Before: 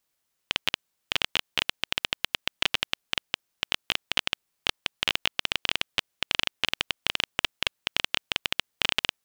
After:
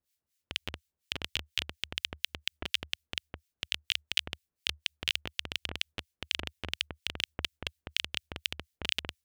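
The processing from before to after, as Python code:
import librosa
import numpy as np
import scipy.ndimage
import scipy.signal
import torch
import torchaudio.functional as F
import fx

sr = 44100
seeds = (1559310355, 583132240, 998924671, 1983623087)

y = fx.peak_eq(x, sr, hz=75.0, db=12.0, octaves=0.47)
y = fx.harmonic_tremolo(y, sr, hz=4.2, depth_pct=100, crossover_hz=1500.0)
y = fx.peak_eq(y, sr, hz=1000.0, db=-9.0, octaves=1.6)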